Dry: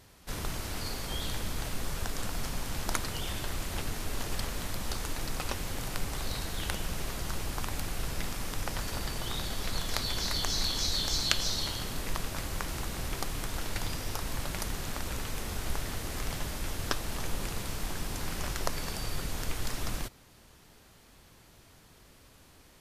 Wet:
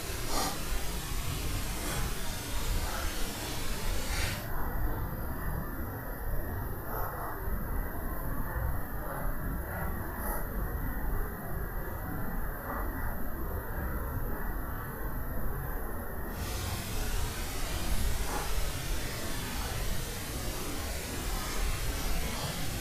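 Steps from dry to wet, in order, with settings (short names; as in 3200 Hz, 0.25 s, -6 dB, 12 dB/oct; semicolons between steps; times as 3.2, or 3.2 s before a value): spectral gain 13.79–15.48, 2000–11000 Hz -23 dB; Paulstretch 7.1×, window 0.05 s, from 13.17; gain +1 dB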